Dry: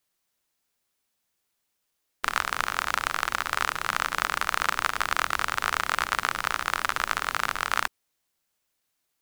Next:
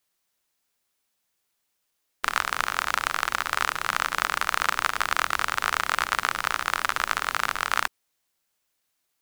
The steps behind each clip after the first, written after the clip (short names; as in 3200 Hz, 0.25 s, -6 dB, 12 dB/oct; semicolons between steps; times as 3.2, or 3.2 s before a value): low shelf 380 Hz -3 dB; gain +1.5 dB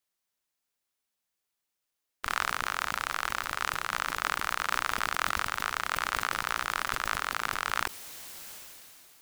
sustainer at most 20 dB/s; gain -8 dB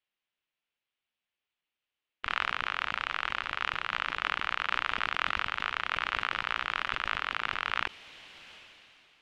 synth low-pass 2900 Hz, resonance Q 2.5; gain -3.5 dB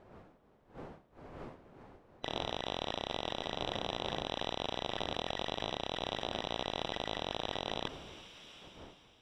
band inversion scrambler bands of 2000 Hz; wind noise 630 Hz -48 dBFS; limiter -16.5 dBFS, peak gain reduction 6.5 dB; gain -3 dB